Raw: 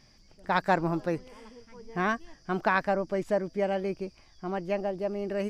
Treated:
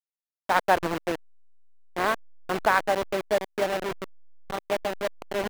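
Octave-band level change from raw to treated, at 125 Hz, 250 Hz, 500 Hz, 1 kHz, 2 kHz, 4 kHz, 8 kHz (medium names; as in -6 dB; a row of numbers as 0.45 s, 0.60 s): -5.5 dB, -3.0 dB, +2.0 dB, +4.0 dB, +3.5 dB, +8.5 dB, no reading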